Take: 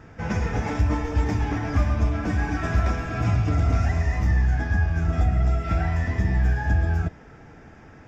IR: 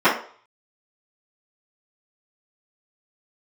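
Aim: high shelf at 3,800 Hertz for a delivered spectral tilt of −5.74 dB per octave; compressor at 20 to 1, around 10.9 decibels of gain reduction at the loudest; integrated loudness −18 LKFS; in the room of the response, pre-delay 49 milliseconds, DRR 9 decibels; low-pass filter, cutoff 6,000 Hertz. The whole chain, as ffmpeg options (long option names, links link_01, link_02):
-filter_complex "[0:a]lowpass=6000,highshelf=frequency=3800:gain=-6.5,acompressor=threshold=-27dB:ratio=20,asplit=2[link_01][link_02];[1:a]atrim=start_sample=2205,adelay=49[link_03];[link_02][link_03]afir=irnorm=-1:irlink=0,volume=-32.5dB[link_04];[link_01][link_04]amix=inputs=2:normalize=0,volume=15dB"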